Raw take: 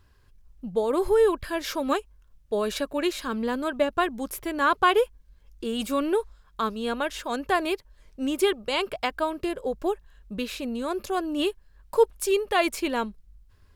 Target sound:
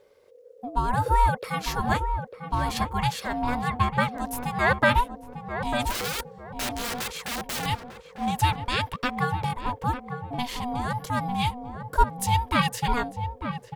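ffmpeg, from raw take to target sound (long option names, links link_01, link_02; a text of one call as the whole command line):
ffmpeg -i in.wav -filter_complex "[0:a]asettb=1/sr,asplit=3[link_01][link_02][link_03];[link_01]atrim=end=5.874[link_04];[link_02]atrim=start=5.87:end=7.66,asetpts=PTS-STARTPTS,afade=type=in:duration=0.004:curve=qsin,afade=type=out:start_time=1.786:duration=0.004:curve=qsin,aeval=exprs='(mod(20*val(0)+1,2)-1)/20':channel_layout=same[link_05];[link_03]atrim=start=7.656[link_06];[link_04][link_05]acrossfade=duration=0.004:curve1=hsin:curve2=qsin[link_07];[link_07][link_06]acrossfade=duration=0.004:curve1=qsin:curve2=hsin,aeval=exprs='val(0)*sin(2*PI*490*n/s)':channel_layout=same,asplit=2[link_08][link_09];[link_09]adelay=898,lowpass=frequency=1000:poles=1,volume=-6.5dB,asplit=2[link_10][link_11];[link_11]adelay=898,lowpass=frequency=1000:poles=1,volume=0.37,asplit=2[link_12][link_13];[link_13]adelay=898,lowpass=frequency=1000:poles=1,volume=0.37,asplit=2[link_14][link_15];[link_15]adelay=898,lowpass=frequency=1000:poles=1,volume=0.37[link_16];[link_08][link_10][link_12][link_14][link_16]amix=inputs=5:normalize=0,volume=3dB" out.wav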